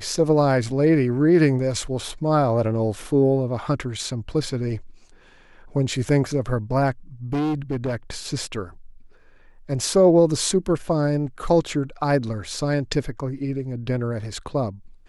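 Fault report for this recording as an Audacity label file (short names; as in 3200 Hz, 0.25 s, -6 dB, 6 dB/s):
7.330000	8.100000	clipped -20.5 dBFS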